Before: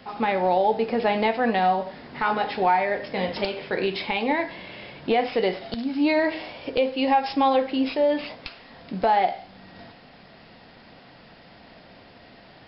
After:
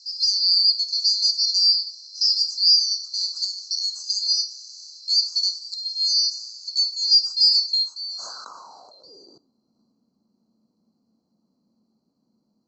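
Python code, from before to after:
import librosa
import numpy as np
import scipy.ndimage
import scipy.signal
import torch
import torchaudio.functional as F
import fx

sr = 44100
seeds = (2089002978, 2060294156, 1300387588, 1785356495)

y = fx.band_swap(x, sr, width_hz=4000)
y = fx.filter_sweep_bandpass(y, sr, from_hz=5000.0, to_hz=220.0, start_s=7.63, end_s=9.57, q=6.3)
y = fx.sustainer(y, sr, db_per_s=22.0, at=(7.95, 9.38))
y = y * librosa.db_to_amplitude(5.5)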